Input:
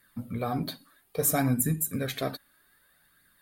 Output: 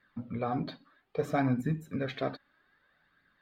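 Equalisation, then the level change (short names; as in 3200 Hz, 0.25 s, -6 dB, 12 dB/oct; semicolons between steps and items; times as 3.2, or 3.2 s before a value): air absorption 170 m; low shelf 140 Hz -7 dB; bell 8900 Hz -11 dB 1.4 oct; 0.0 dB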